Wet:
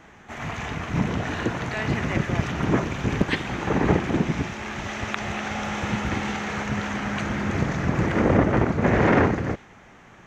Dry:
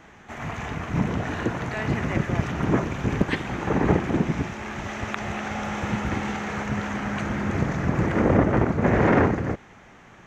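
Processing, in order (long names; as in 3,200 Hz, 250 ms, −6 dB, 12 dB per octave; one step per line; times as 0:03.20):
dynamic equaliser 4,000 Hz, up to +5 dB, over −47 dBFS, Q 0.74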